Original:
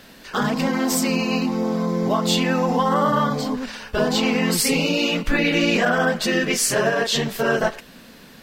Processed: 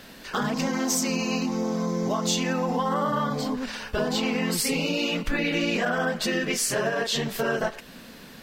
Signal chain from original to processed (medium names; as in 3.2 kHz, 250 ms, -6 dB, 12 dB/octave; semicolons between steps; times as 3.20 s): 0.54–2.53 s: peaking EQ 6.2 kHz +10.5 dB 0.41 oct; compression 2:1, threshold -27 dBFS, peak gain reduction 7.5 dB